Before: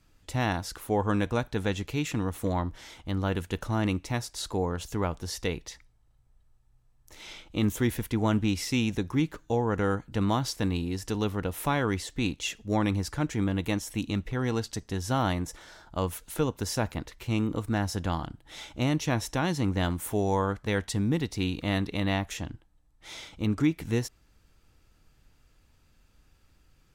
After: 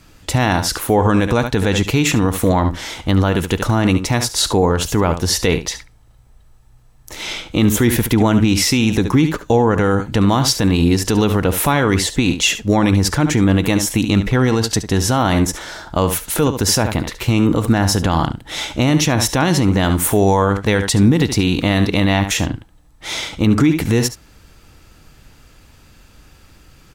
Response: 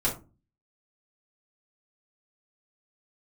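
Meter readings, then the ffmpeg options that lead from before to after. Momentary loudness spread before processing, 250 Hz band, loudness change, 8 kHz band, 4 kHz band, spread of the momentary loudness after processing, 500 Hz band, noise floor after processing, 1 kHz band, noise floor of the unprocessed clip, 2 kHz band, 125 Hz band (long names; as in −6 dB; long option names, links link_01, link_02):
8 LU, +13.5 dB, +13.5 dB, +18.0 dB, +16.0 dB, 7 LU, +13.0 dB, −48 dBFS, +12.5 dB, −64 dBFS, +13.5 dB, +13.0 dB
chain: -af "lowshelf=frequency=60:gain=-6,aecho=1:1:71:0.211,alimiter=level_in=22dB:limit=-1dB:release=50:level=0:latency=1,volume=-3.5dB"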